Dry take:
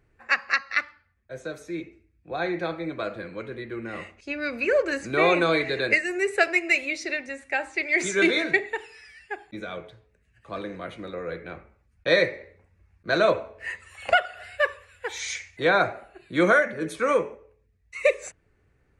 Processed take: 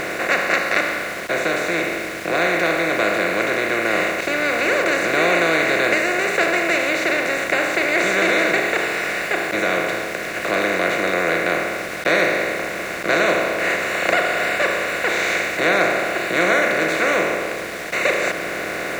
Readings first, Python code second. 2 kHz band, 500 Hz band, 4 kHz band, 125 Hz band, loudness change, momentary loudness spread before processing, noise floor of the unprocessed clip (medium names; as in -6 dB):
+8.0 dB, +6.0 dB, +8.0 dB, +4.5 dB, +6.0 dB, 16 LU, -66 dBFS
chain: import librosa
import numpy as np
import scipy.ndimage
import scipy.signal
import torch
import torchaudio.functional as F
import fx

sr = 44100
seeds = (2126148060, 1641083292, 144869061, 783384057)

y = fx.bin_compress(x, sr, power=0.2)
y = np.where(np.abs(y) >= 10.0 ** (-25.5 / 20.0), y, 0.0)
y = y * 10.0 ** (-6.0 / 20.0)